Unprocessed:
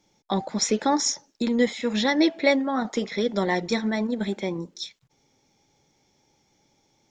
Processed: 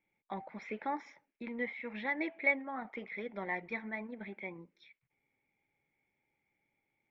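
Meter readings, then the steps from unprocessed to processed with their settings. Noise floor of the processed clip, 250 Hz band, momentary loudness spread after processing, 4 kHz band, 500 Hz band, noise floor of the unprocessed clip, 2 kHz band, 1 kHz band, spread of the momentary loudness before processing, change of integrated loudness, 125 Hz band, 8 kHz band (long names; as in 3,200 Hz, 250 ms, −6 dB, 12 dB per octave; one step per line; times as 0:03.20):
−84 dBFS, −18.5 dB, 14 LU, −27.5 dB, −16.5 dB, −68 dBFS, −6.0 dB, −12.5 dB, 9 LU, −13.5 dB, −19.0 dB, below −40 dB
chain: dynamic equaliser 830 Hz, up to +6 dB, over −38 dBFS, Q 1.4
transistor ladder low-pass 2,400 Hz, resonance 75%
level −7 dB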